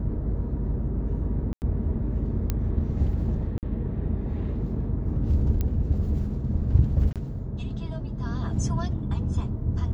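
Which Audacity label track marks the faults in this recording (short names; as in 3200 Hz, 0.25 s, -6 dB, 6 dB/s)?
1.530000	1.620000	gap 89 ms
2.500000	2.500000	pop -12 dBFS
3.580000	3.630000	gap 48 ms
5.610000	5.610000	pop -15 dBFS
7.130000	7.160000	gap 27 ms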